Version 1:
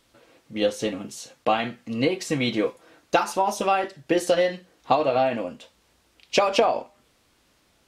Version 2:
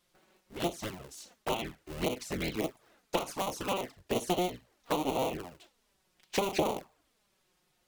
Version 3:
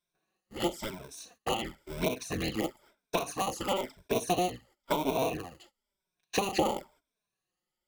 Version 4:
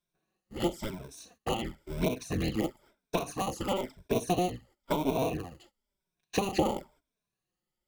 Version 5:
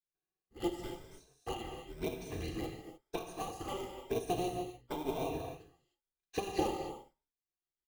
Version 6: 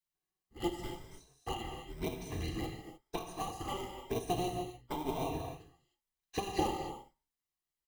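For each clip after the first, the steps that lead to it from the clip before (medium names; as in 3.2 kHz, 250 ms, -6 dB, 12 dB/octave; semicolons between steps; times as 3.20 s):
cycle switcher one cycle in 3, inverted; touch-sensitive flanger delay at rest 5.7 ms, full sweep at -18.5 dBFS; treble shelf 11 kHz +7.5 dB; trim -8 dB
drifting ripple filter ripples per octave 1.6, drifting +0.99 Hz, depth 12 dB; gate -58 dBFS, range -16 dB
bass shelf 350 Hz +9 dB; trim -3 dB
comb 2.5 ms, depth 48%; gated-style reverb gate 330 ms flat, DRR 1 dB; upward expansion 1.5:1, over -45 dBFS; trim -7 dB
comb 1 ms, depth 37%; trim +1 dB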